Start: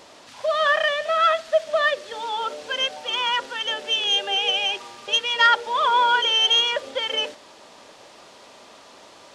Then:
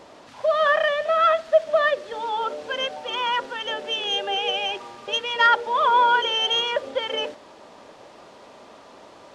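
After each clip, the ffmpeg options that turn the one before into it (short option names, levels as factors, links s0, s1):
-af "highshelf=f=2000:g=-11.5,volume=1.5"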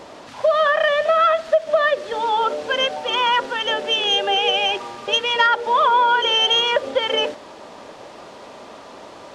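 -af "acompressor=threshold=0.1:ratio=6,volume=2.24"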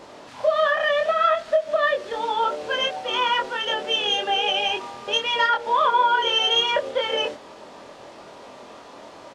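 -filter_complex "[0:a]asplit=2[s0][s1];[s1]adelay=24,volume=0.708[s2];[s0][s2]amix=inputs=2:normalize=0,volume=0.562"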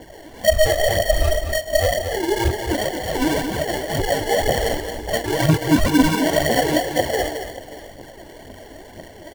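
-af "acrusher=samples=35:mix=1:aa=0.000001,aphaser=in_gain=1:out_gain=1:delay=3.5:decay=0.57:speed=2:type=triangular,aecho=1:1:221|584:0.422|0.141"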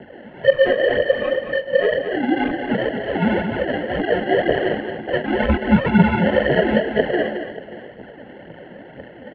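-af "highpass=f=180:t=q:w=0.5412,highpass=f=180:t=q:w=1.307,lowpass=f=2900:t=q:w=0.5176,lowpass=f=2900:t=q:w=0.7071,lowpass=f=2900:t=q:w=1.932,afreqshift=-88,volume=1.26"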